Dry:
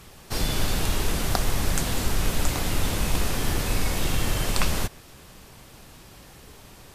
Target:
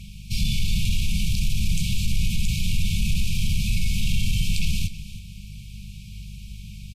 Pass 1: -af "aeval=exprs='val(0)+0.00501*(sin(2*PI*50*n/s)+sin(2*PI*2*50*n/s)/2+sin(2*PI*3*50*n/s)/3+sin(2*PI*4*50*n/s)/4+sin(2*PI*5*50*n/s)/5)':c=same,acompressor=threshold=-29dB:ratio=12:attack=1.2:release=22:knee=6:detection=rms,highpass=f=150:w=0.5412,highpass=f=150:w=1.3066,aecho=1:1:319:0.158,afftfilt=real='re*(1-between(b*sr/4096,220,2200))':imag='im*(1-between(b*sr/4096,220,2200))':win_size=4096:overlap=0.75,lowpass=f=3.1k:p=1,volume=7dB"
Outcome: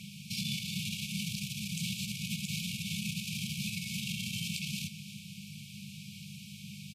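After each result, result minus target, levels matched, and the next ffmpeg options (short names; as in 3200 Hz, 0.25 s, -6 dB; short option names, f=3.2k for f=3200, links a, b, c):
compressor: peak gain reduction +7.5 dB; 125 Hz band -3.0 dB
-af "aeval=exprs='val(0)+0.00501*(sin(2*PI*50*n/s)+sin(2*PI*2*50*n/s)/2+sin(2*PI*3*50*n/s)/3+sin(2*PI*4*50*n/s)/4+sin(2*PI*5*50*n/s)/5)':c=same,acompressor=threshold=-21dB:ratio=12:attack=1.2:release=22:knee=6:detection=rms,highpass=f=150:w=0.5412,highpass=f=150:w=1.3066,aecho=1:1:319:0.158,afftfilt=real='re*(1-between(b*sr/4096,220,2200))':imag='im*(1-between(b*sr/4096,220,2200))':win_size=4096:overlap=0.75,lowpass=f=3.1k:p=1,volume=7dB"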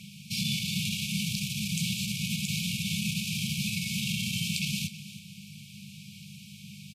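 125 Hz band -4.0 dB
-af "aeval=exprs='val(0)+0.00501*(sin(2*PI*50*n/s)+sin(2*PI*2*50*n/s)/2+sin(2*PI*3*50*n/s)/3+sin(2*PI*4*50*n/s)/4+sin(2*PI*5*50*n/s)/5)':c=same,acompressor=threshold=-21dB:ratio=12:attack=1.2:release=22:knee=6:detection=rms,aecho=1:1:319:0.158,afftfilt=real='re*(1-between(b*sr/4096,220,2200))':imag='im*(1-between(b*sr/4096,220,2200))':win_size=4096:overlap=0.75,lowpass=f=3.1k:p=1,volume=7dB"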